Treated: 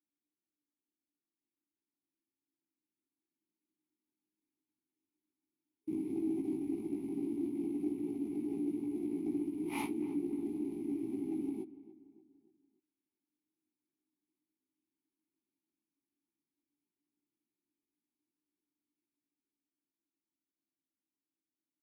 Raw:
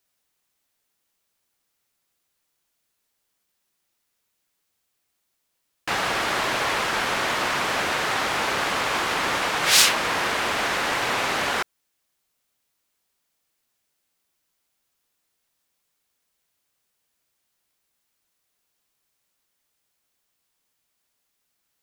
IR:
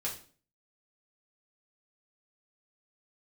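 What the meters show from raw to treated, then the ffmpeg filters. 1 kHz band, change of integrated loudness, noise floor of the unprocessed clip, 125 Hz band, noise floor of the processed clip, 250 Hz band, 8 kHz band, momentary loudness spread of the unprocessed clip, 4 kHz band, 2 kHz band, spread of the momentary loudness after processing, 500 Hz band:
-29.5 dB, -15.5 dB, -76 dBFS, -12.5 dB, under -85 dBFS, +2.5 dB, -33.5 dB, 7 LU, under -35 dB, -33.5 dB, 3 LU, -13.0 dB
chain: -filter_complex "[0:a]afftfilt=real='re*(1-between(b*sr/4096,420,9600))':imag='im*(1-between(b*sr/4096,420,9600))':win_size=4096:overlap=0.75,equalizer=f=1k:t=o:w=1:g=-8,equalizer=f=4k:t=o:w=1:g=10,equalizer=f=8k:t=o:w=1:g=8,aeval=exprs='0.316*(cos(1*acos(clip(val(0)/0.316,-1,1)))-cos(1*PI/2))+0.0562*(cos(3*acos(clip(val(0)/0.316,-1,1)))-cos(3*PI/2))+0.0178*(cos(5*acos(clip(val(0)/0.316,-1,1)))-cos(5*PI/2))+0.0398*(cos(6*acos(clip(val(0)/0.316,-1,1)))-cos(6*PI/2))':c=same,acrusher=bits=4:mode=log:mix=0:aa=0.000001,dynaudnorm=f=360:g=17:m=6dB,flanger=delay=17:depth=2.3:speed=0.11,asplit=3[a][b][c];[a]bandpass=f=300:t=q:w=8,volume=0dB[d];[b]bandpass=f=870:t=q:w=8,volume=-6dB[e];[c]bandpass=f=2.24k:t=q:w=8,volume=-9dB[f];[d][e][f]amix=inputs=3:normalize=0,asplit=2[g][h];[h]adelay=289,lowpass=f=2.2k:p=1,volume=-17dB,asplit=2[i][j];[j]adelay=289,lowpass=f=2.2k:p=1,volume=0.47,asplit=2[k][l];[l]adelay=289,lowpass=f=2.2k:p=1,volume=0.47,asplit=2[m][n];[n]adelay=289,lowpass=f=2.2k:p=1,volume=0.47[o];[i][k][m][o]amix=inputs=4:normalize=0[p];[g][p]amix=inputs=2:normalize=0,volume=8.5dB"

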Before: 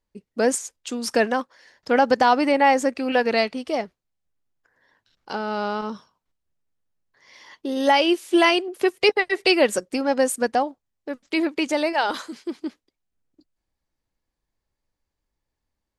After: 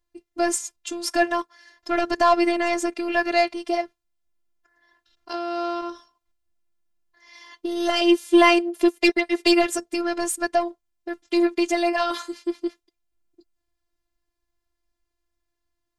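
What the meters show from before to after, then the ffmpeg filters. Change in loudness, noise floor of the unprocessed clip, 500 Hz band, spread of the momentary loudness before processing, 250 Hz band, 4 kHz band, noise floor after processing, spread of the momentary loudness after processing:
-1.0 dB, -83 dBFS, -1.5 dB, 16 LU, +2.0 dB, -1.0 dB, -80 dBFS, 15 LU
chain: -af "aeval=exprs='0.562*(cos(1*acos(clip(val(0)/0.562,-1,1)))-cos(1*PI/2))+0.0447*(cos(2*acos(clip(val(0)/0.562,-1,1)))-cos(2*PI/2))+0.0355*(cos(5*acos(clip(val(0)/0.562,-1,1)))-cos(5*PI/2))':c=same,afftfilt=real='hypot(re,im)*cos(PI*b)':imag='0':win_size=512:overlap=0.75,volume=2dB"

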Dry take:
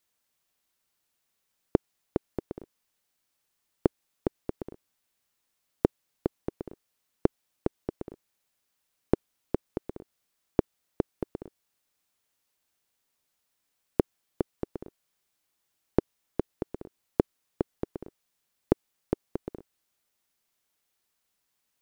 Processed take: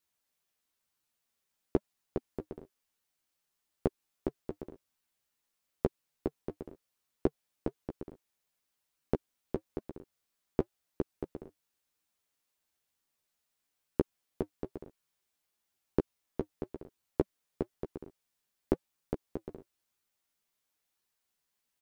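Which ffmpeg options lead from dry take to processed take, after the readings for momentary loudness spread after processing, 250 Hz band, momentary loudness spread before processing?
14 LU, -5.0 dB, 14 LU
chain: -filter_complex "[0:a]flanger=delay=0.7:depth=4.3:regen=-66:speed=1:shape=sinusoidal,asplit=2[a][b];[b]adelay=13,volume=-5.5dB[c];[a][c]amix=inputs=2:normalize=0,volume=-1.5dB"

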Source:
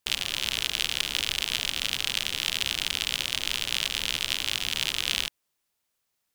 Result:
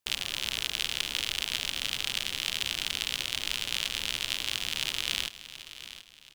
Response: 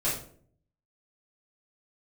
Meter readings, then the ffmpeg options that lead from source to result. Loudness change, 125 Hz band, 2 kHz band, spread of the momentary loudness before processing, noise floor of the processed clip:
-3.5 dB, -3.5 dB, -3.5 dB, 1 LU, -54 dBFS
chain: -af "aecho=1:1:727|1454|2181|2908:0.211|0.0782|0.0289|0.0107,volume=-3.5dB"

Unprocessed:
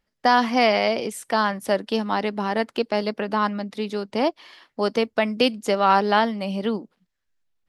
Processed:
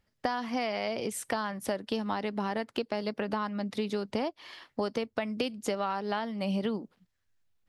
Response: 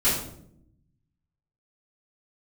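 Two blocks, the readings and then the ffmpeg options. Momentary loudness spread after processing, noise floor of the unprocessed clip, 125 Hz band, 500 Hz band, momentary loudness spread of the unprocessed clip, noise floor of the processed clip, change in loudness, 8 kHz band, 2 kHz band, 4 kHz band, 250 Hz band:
3 LU, -78 dBFS, n/a, -10.0 dB, 9 LU, -78 dBFS, -10.5 dB, -2.5 dB, -12.0 dB, -11.0 dB, -7.5 dB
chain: -af "acompressor=threshold=-28dB:ratio=10,equalizer=f=98:w=1.6:g=10"

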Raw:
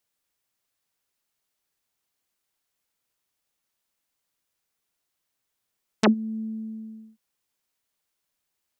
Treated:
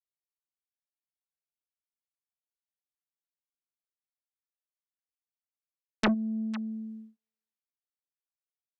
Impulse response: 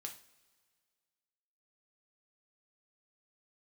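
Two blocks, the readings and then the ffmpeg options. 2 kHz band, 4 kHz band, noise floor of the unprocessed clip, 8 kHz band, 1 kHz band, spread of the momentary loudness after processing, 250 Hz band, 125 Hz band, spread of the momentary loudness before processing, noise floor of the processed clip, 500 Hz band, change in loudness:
-1.5 dB, -3.5 dB, -81 dBFS, -6.5 dB, -4.0 dB, 14 LU, -4.0 dB, -4.0 dB, 16 LU, under -85 dBFS, -7.5 dB, -4.5 dB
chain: -filter_complex "[0:a]agate=range=-33dB:threshold=-44dB:ratio=3:detection=peak,lowpass=f=3.2k:p=1,acrossover=split=120|920[a][b][c];[b]asoftclip=type=tanh:threshold=-23.5dB[d];[c]aecho=1:1:503:0.178[e];[a][d][e]amix=inputs=3:normalize=0"

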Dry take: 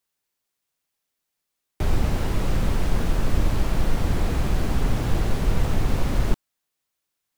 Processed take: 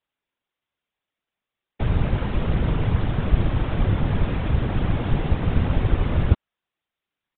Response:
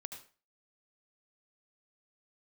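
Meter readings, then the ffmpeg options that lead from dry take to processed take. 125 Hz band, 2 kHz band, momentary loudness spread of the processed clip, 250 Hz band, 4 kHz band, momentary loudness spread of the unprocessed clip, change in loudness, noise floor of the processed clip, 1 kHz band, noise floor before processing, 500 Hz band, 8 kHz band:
+4.0 dB, +0.5 dB, 2 LU, +2.5 dB, -2.0 dB, 2 LU, +2.5 dB, under -85 dBFS, +0.5 dB, -81 dBFS, +1.0 dB, under -40 dB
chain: -af "afftfilt=real='hypot(re,im)*cos(2*PI*random(0))':imag='hypot(re,im)*sin(2*PI*random(1))':win_size=512:overlap=0.75,aresample=8000,aresample=44100,volume=6.5dB"

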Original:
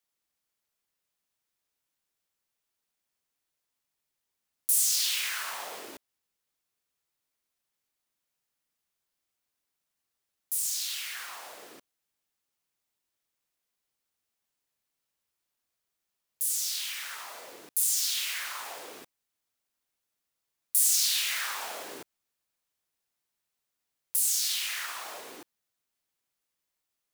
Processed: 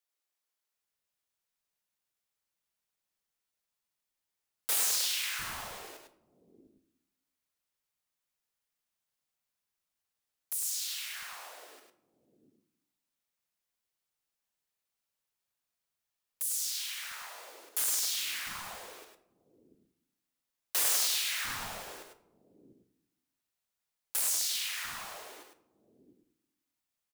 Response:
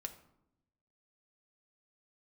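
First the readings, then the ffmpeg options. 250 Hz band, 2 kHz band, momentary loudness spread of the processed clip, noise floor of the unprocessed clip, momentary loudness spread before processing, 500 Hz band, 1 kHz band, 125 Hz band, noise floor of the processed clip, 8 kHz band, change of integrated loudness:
-1.0 dB, -2.5 dB, 19 LU, -84 dBFS, 21 LU, -2.0 dB, -2.0 dB, n/a, under -85 dBFS, -4.5 dB, -4.0 dB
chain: -filter_complex "[0:a]aeval=exprs='(mod(7.5*val(0)+1,2)-1)/7.5':c=same,acrossover=split=300[a][b];[a]adelay=700[c];[c][b]amix=inputs=2:normalize=0,asplit=2[d][e];[1:a]atrim=start_sample=2205,adelay=102[f];[e][f]afir=irnorm=-1:irlink=0,volume=-2dB[g];[d][g]amix=inputs=2:normalize=0,volume=-4.5dB"

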